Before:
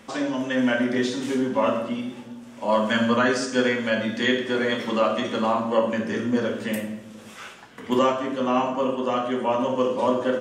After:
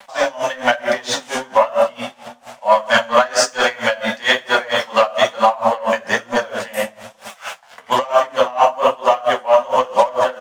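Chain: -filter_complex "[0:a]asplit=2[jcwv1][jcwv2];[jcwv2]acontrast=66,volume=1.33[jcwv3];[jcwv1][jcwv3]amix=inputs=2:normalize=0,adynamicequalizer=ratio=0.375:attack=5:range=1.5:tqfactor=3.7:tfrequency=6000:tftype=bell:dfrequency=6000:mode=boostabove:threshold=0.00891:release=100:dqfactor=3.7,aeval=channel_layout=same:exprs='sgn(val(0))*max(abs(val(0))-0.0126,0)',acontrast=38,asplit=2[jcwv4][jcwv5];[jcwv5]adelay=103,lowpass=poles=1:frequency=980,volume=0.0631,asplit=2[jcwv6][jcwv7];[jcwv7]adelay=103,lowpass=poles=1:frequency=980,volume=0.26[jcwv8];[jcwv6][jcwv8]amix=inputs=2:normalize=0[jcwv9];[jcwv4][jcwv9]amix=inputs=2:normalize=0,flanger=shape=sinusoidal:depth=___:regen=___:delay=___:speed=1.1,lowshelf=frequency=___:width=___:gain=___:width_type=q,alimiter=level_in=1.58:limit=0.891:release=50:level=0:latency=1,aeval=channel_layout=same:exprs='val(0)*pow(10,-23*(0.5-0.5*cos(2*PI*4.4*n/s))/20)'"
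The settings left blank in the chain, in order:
8.4, 36, 5, 480, 3, -12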